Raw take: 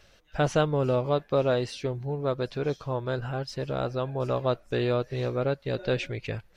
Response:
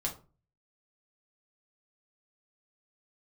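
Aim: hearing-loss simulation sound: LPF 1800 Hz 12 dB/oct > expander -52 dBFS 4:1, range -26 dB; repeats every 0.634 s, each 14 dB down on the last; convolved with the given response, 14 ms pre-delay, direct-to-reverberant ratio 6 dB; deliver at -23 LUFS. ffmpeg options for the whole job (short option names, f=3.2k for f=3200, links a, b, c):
-filter_complex "[0:a]aecho=1:1:634|1268:0.2|0.0399,asplit=2[a][b];[1:a]atrim=start_sample=2205,adelay=14[c];[b][c]afir=irnorm=-1:irlink=0,volume=-9dB[d];[a][d]amix=inputs=2:normalize=0,lowpass=1.8k,agate=range=-26dB:threshold=-52dB:ratio=4,volume=4dB"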